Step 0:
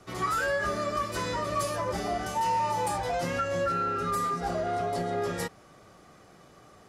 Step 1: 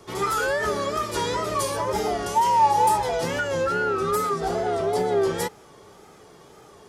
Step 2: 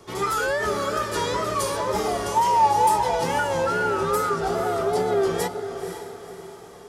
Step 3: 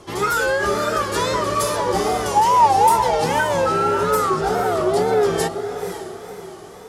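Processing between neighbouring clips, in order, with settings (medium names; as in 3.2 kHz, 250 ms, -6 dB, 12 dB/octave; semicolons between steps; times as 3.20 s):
wow and flutter 100 cents; treble shelf 4 kHz +6 dB; small resonant body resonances 420/870/3300 Hz, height 11 dB, ringing for 40 ms; trim +2 dB
echo that smears into a reverb 508 ms, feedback 44%, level -9 dB
wow and flutter 120 cents; trim +4.5 dB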